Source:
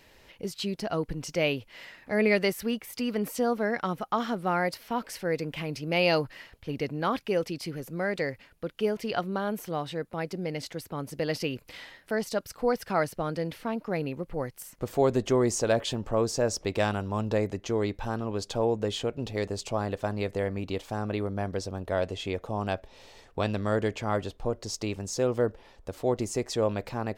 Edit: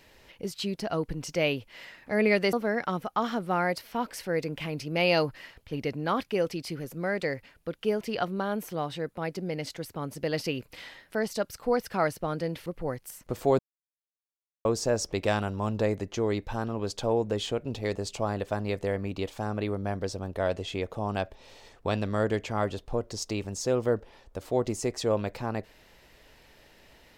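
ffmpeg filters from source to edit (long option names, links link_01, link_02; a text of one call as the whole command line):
ffmpeg -i in.wav -filter_complex "[0:a]asplit=5[link_01][link_02][link_03][link_04][link_05];[link_01]atrim=end=2.532[link_06];[link_02]atrim=start=3.488:end=13.622[link_07];[link_03]atrim=start=14.178:end=15.11,asetpts=PTS-STARTPTS,afade=type=out:start_time=0.928:duration=0.004:curve=hsin[link_08];[link_04]atrim=start=15.11:end=16.17,asetpts=PTS-STARTPTS,volume=0[link_09];[link_05]atrim=start=16.17,asetpts=PTS-STARTPTS,afade=type=in:duration=0.004:curve=hsin[link_10];[link_06][link_07]acrossfade=duration=0.004:curve1=hsin:curve2=hsin[link_11];[link_08][link_09][link_10]concat=n=3:v=0:a=1[link_12];[link_11][link_12]acrossfade=duration=0.004:curve1=hsin:curve2=hsin" out.wav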